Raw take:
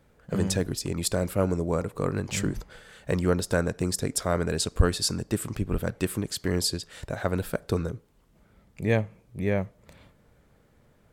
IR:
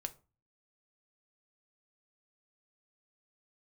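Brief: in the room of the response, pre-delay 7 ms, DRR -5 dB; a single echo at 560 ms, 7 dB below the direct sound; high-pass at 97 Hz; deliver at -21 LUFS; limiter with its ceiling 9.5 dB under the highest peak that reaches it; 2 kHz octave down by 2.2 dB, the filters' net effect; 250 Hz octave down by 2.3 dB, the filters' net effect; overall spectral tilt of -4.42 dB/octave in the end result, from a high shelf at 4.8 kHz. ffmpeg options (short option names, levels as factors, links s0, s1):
-filter_complex "[0:a]highpass=97,equalizer=f=250:t=o:g=-3,equalizer=f=2000:t=o:g=-3.5,highshelf=f=4800:g=3.5,alimiter=limit=0.119:level=0:latency=1,aecho=1:1:560:0.447,asplit=2[s0][s1];[1:a]atrim=start_sample=2205,adelay=7[s2];[s1][s2]afir=irnorm=-1:irlink=0,volume=2.24[s3];[s0][s3]amix=inputs=2:normalize=0,volume=1.58"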